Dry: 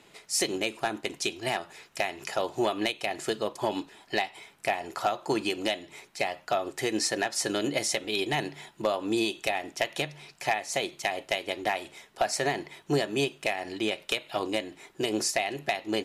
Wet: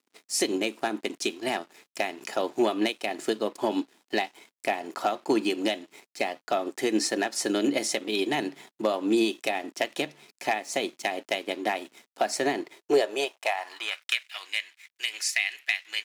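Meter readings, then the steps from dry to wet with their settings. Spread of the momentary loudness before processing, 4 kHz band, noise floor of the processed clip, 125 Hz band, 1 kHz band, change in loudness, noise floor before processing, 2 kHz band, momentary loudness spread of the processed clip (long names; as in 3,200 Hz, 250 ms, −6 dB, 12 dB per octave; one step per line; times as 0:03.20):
6 LU, +0.5 dB, below −85 dBFS, −7.5 dB, 0.0 dB, +1.5 dB, −59 dBFS, +1.0 dB, 8 LU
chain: loose part that buzzes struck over −30 dBFS, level −32 dBFS
dead-zone distortion −50.5 dBFS
high-pass filter sweep 250 Hz → 2,100 Hz, 0:12.50–0:14.30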